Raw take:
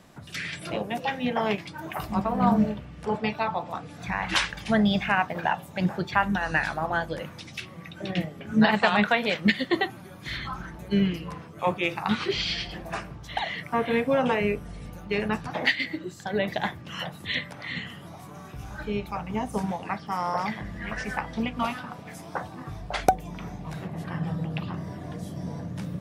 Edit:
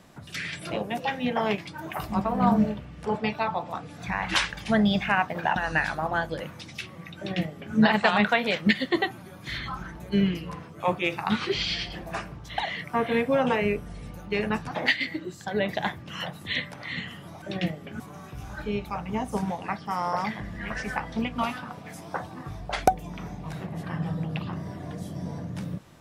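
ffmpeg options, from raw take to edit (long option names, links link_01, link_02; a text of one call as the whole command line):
ffmpeg -i in.wav -filter_complex "[0:a]asplit=4[link_01][link_02][link_03][link_04];[link_01]atrim=end=5.562[link_05];[link_02]atrim=start=6.348:end=18.212[link_06];[link_03]atrim=start=7.958:end=8.542[link_07];[link_04]atrim=start=18.208[link_08];[link_05][link_06]acrossfade=duration=0.004:curve1=hsin:curve2=hsin[link_09];[link_09][link_07]acrossfade=duration=0.004:curve1=hsin:curve2=hsin[link_10];[link_10][link_08]acrossfade=duration=0.004:curve1=hsin:curve2=hsin" out.wav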